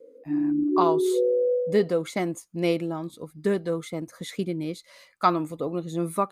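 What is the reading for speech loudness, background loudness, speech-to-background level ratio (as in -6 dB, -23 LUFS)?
-28.0 LUFS, -24.5 LUFS, -3.5 dB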